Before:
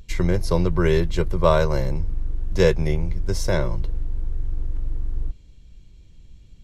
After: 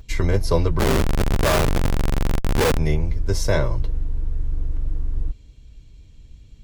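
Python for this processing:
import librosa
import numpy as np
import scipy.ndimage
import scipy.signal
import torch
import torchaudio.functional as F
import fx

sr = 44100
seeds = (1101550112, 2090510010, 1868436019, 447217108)

y = fx.notch_comb(x, sr, f0_hz=180.0)
y = fx.schmitt(y, sr, flips_db=-23.0, at=(0.79, 2.78))
y = F.gain(torch.from_numpy(y), 3.5).numpy()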